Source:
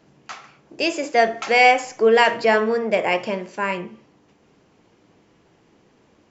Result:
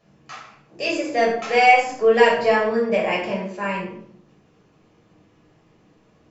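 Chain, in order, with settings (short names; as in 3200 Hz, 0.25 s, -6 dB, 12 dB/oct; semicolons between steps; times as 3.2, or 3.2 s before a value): shoebox room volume 740 m³, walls furnished, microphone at 6 m; gain -9 dB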